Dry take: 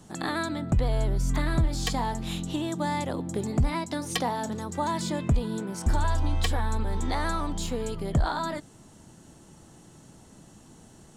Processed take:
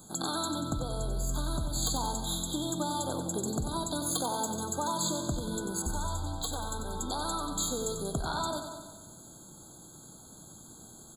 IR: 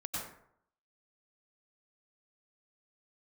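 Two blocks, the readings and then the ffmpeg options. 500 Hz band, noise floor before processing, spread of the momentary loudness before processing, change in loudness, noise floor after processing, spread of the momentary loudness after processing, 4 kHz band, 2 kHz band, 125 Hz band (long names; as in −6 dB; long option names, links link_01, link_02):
−3.5 dB, −53 dBFS, 5 LU, −4.0 dB, −52 dBFS, 18 LU, 0.0 dB, −10.0 dB, −8.5 dB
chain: -filter_complex "[0:a]acompressor=threshold=-26dB:ratio=6,aemphasis=mode=production:type=75kf,asoftclip=type=tanh:threshold=-16dB,lowshelf=frequency=130:gain=-4.5,aecho=1:1:93|186|279|372|465|558|651|744:0.398|0.239|0.143|0.086|0.0516|0.031|0.0186|0.0111,asplit=2[link_01][link_02];[1:a]atrim=start_sample=2205,adelay=138[link_03];[link_02][link_03]afir=irnorm=-1:irlink=0,volume=-17.5dB[link_04];[link_01][link_04]amix=inputs=2:normalize=0,afftfilt=real='re*eq(mod(floor(b*sr/1024/1600),2),0)':imag='im*eq(mod(floor(b*sr/1024/1600),2),0)':win_size=1024:overlap=0.75,volume=-2dB"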